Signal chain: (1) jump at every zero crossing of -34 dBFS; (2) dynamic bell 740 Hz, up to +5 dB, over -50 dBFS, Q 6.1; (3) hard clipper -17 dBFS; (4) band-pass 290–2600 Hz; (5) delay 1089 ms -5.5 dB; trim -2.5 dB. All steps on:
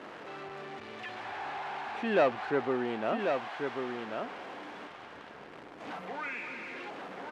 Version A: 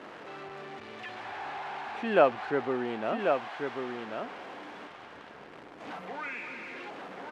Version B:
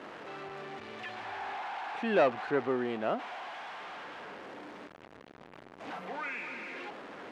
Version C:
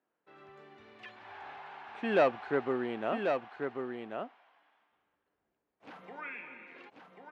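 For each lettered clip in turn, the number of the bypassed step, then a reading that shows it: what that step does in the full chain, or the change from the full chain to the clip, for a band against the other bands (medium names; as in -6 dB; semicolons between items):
3, distortion -11 dB; 5, momentary loudness spread change +3 LU; 1, distortion -9 dB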